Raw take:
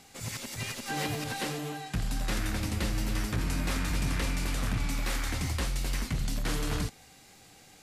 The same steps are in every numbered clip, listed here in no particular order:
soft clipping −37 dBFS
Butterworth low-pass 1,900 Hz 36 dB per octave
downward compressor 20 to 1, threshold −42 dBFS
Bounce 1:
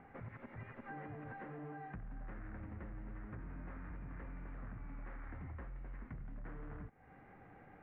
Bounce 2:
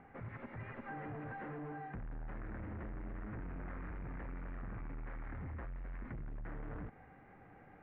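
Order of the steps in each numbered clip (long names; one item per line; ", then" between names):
downward compressor, then soft clipping, then Butterworth low-pass
soft clipping, then Butterworth low-pass, then downward compressor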